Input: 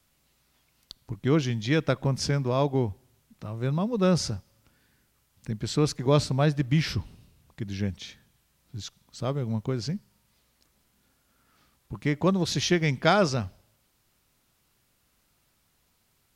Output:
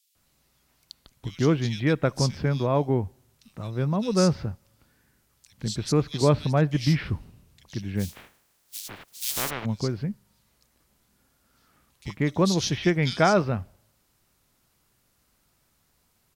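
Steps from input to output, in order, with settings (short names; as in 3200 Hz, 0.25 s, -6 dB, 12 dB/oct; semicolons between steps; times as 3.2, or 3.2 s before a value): 7.96–9.49 spectral contrast lowered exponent 0.17; bands offset in time highs, lows 0.15 s, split 2900 Hz; gain +1.5 dB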